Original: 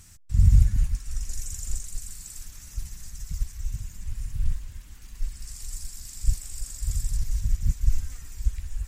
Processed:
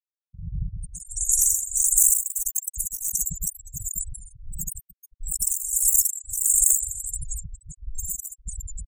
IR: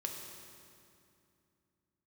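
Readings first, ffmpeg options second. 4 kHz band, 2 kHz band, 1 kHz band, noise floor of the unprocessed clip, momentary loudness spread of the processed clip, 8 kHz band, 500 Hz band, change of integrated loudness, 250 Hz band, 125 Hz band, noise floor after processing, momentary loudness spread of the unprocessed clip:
-1.5 dB, under -35 dB, under -30 dB, -46 dBFS, 19 LU, +19.0 dB, under -20 dB, +8.5 dB, n/a, -12.0 dB, under -85 dBFS, 17 LU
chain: -filter_complex "[0:a]aeval=exprs='val(0)*gte(abs(val(0)),0.0141)':c=same,lowshelf=f=340:g=-5.5,areverse,acompressor=threshold=-35dB:ratio=5,areverse,equalizer=f=170:w=1.8:g=14,asplit=2[a][b];[1:a]atrim=start_sample=2205,lowshelf=f=100:g=8.5,adelay=124[c];[b][c]afir=irnorm=-1:irlink=0,volume=-18.5dB[d];[a][d]amix=inputs=2:normalize=0,aexciter=amount=9.3:drive=8:freq=5.6k,acontrast=58,afftfilt=real='re*gte(hypot(re,im),0.158)':imag='im*gte(hypot(re,im),0.158)':win_size=1024:overlap=0.75,tremolo=f=1.5:d=0.76"

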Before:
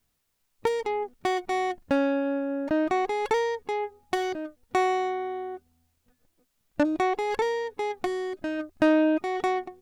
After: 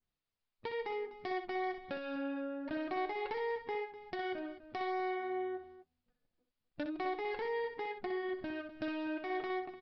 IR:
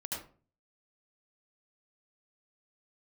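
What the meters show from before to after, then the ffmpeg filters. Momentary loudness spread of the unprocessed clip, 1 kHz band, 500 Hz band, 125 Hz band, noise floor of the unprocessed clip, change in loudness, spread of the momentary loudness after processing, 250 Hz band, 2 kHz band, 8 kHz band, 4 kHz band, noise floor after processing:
8 LU, -11.5 dB, -11.5 dB, under -10 dB, -75 dBFS, -11.5 dB, 6 LU, -13.0 dB, -9.0 dB, under -30 dB, -10.5 dB, under -85 dBFS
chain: -filter_complex "[0:a]agate=range=-10dB:threshold=-59dB:ratio=16:detection=peak,acrossover=split=1400|3200[a][b][c];[a]acompressor=threshold=-34dB:ratio=4[d];[b]acompressor=threshold=-39dB:ratio=4[e];[c]acompressor=threshold=-57dB:ratio=4[f];[d][e][f]amix=inputs=3:normalize=0,aresample=11025,asoftclip=type=hard:threshold=-28.5dB,aresample=44100,flanger=delay=5.4:depth=3.3:regen=-50:speed=1:shape=sinusoidal,asplit=2[g][h];[h]aecho=0:1:62|250:0.398|0.2[i];[g][i]amix=inputs=2:normalize=0,adynamicequalizer=threshold=0.00178:dfrequency=3300:dqfactor=0.7:tfrequency=3300:tqfactor=0.7:attack=5:release=100:ratio=0.375:range=2.5:mode=cutabove:tftype=highshelf"

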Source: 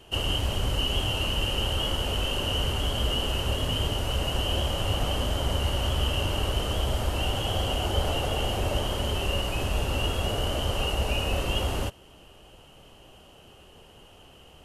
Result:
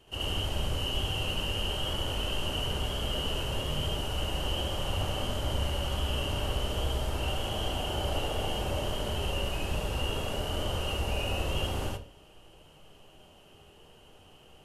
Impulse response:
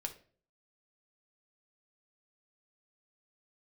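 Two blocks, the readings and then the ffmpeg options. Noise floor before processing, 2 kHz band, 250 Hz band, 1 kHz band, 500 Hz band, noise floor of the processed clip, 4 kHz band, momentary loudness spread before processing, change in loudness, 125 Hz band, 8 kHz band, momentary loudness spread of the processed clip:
-52 dBFS, -4.0 dB, -4.0 dB, -4.0 dB, -4.0 dB, -56 dBFS, -4.5 dB, 2 LU, -4.5 dB, -5.0 dB, -4.5 dB, 2 LU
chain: -filter_complex "[0:a]asplit=2[a][b];[1:a]atrim=start_sample=2205,adelay=73[c];[b][c]afir=irnorm=-1:irlink=0,volume=3.5dB[d];[a][d]amix=inputs=2:normalize=0,volume=-8.5dB"

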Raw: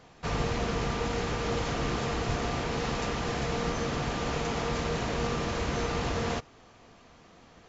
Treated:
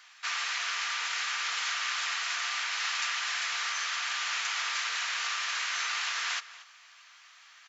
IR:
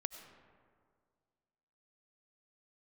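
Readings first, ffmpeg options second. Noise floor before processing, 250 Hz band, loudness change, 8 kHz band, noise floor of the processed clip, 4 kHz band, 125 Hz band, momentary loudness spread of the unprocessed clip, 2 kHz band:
-56 dBFS, under -40 dB, +1.0 dB, n/a, -56 dBFS, +7.0 dB, under -40 dB, 1 LU, +6.5 dB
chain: -filter_complex "[0:a]highpass=f=1.4k:w=0.5412,highpass=f=1.4k:w=1.3066,asplit=2[a][b];[b]adelay=233.2,volume=-16dB,highshelf=f=4k:g=-5.25[c];[a][c]amix=inputs=2:normalize=0,volume=7dB"

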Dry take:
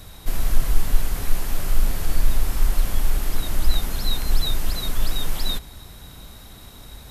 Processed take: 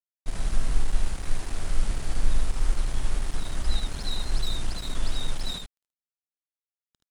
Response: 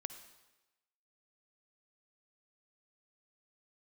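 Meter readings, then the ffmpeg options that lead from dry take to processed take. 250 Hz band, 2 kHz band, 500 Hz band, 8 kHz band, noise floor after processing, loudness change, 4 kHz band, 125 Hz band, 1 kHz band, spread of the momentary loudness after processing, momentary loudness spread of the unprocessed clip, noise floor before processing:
-5.0 dB, -5.0 dB, -5.0 dB, -6.0 dB, under -85 dBFS, -5.5 dB, -5.5 dB, -5.0 dB, -5.0 dB, 5 LU, 17 LU, -43 dBFS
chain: -af "aresample=22050,aresample=44100,aeval=exprs='sgn(val(0))*max(abs(val(0))-0.0335,0)':c=same,aecho=1:1:53|76:0.133|0.631,volume=-5.5dB"

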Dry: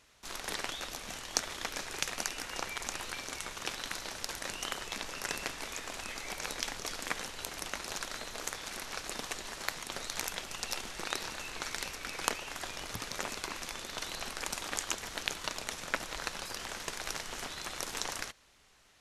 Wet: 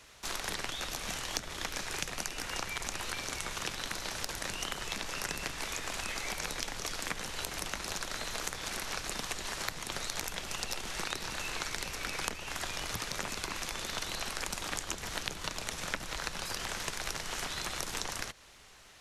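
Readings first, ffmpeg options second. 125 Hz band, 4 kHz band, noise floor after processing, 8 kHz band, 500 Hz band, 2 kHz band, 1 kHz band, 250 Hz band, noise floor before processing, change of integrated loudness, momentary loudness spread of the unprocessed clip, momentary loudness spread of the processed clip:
+6.0 dB, +1.5 dB, -45 dBFS, +1.0 dB, +0.5 dB, +1.0 dB, +1.0 dB, +2.0 dB, -47 dBFS, +1.0 dB, 5 LU, 1 LU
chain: -filter_complex "[0:a]equalizer=f=250:w=4.1:g=-3.5,acrossover=split=250|760[a][b][c];[a]acompressor=threshold=-48dB:ratio=4[d];[b]acompressor=threshold=-56dB:ratio=4[e];[c]acompressor=threshold=-43dB:ratio=4[f];[d][e][f]amix=inputs=3:normalize=0,volume=8dB"

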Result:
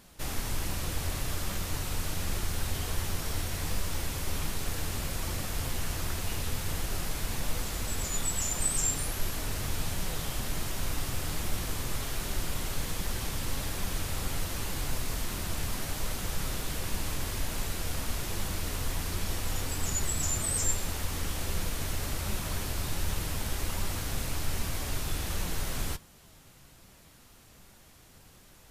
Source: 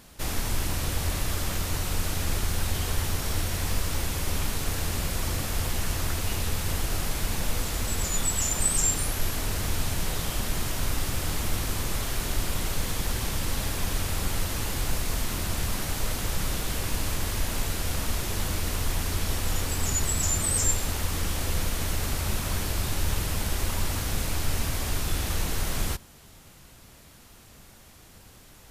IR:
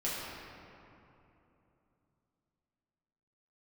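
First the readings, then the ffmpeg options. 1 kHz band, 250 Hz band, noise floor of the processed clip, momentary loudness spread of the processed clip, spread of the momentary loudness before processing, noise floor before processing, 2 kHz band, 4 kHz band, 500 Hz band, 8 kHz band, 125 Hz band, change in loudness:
-4.5 dB, -4.5 dB, -56 dBFS, 5 LU, 5 LU, -51 dBFS, -4.5 dB, -4.5 dB, -4.5 dB, -4.5 dB, -5.0 dB, -4.5 dB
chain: -af "flanger=delay=4.9:depth=3.3:regen=77:speed=1.3:shape=triangular"

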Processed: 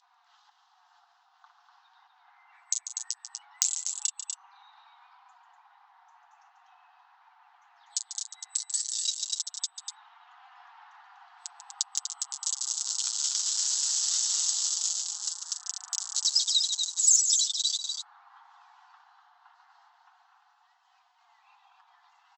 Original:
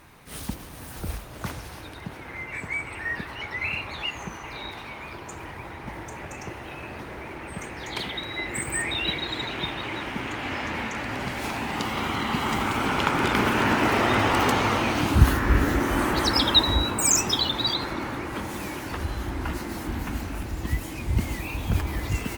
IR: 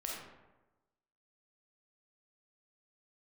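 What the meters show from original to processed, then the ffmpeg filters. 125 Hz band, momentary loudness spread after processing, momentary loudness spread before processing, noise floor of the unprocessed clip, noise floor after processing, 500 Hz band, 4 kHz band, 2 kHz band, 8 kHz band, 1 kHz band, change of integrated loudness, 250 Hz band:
under -40 dB, 14 LU, 17 LU, -41 dBFS, -66 dBFS, under -40 dB, -3.5 dB, -27.5 dB, +6.0 dB, -24.5 dB, -1.5 dB, under -40 dB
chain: -filter_complex "[0:a]acrossover=split=1200[a][b];[b]acrusher=bits=3:mix=0:aa=0.000001[c];[a][c]amix=inputs=2:normalize=0,adynamicequalizer=threshold=0.0112:dfrequency=1300:dqfactor=0.73:tfrequency=1300:tqfactor=0.73:attack=5:release=100:ratio=0.375:range=2.5:mode=boostabove:tftype=bell,acompressor=mode=upward:threshold=-24dB:ratio=2.5,aexciter=amount=13.5:drive=8.9:freq=3.6k,acompressor=threshold=-18dB:ratio=4,aderivative,afftfilt=real='re*between(b*sr/4096,690,8000)':imag='im*between(b*sr/4096,690,8000)':win_size=4096:overlap=0.75,flanger=delay=3.8:depth=5:regen=-16:speed=0.19:shape=triangular,asplit=2[d][e];[e]aecho=0:1:142.9|244.9:0.316|0.501[f];[d][f]amix=inputs=2:normalize=0,aeval=exprs='0.531*(cos(1*acos(clip(val(0)/0.531,-1,1)))-cos(1*PI/2))+0.0075*(cos(2*acos(clip(val(0)/0.531,-1,1)))-cos(2*PI/2))+0.0944*(cos(3*acos(clip(val(0)/0.531,-1,1)))-cos(3*PI/2))+0.0168*(cos(5*acos(clip(val(0)/0.531,-1,1)))-cos(5*PI/2))':c=same,volume=4dB"

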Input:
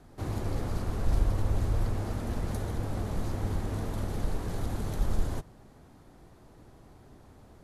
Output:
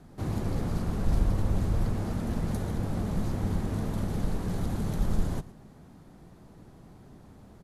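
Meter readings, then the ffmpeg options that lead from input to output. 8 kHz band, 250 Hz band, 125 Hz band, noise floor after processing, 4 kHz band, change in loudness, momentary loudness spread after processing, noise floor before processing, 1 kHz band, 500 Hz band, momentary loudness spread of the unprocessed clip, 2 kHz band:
0.0 dB, +5.5 dB, +2.0 dB, -52 dBFS, 0.0 dB, +2.0 dB, 4 LU, -55 dBFS, 0.0 dB, +1.0 dB, 5 LU, 0.0 dB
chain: -af "equalizer=f=180:w=1.7:g=8.5,aecho=1:1:113:0.119"

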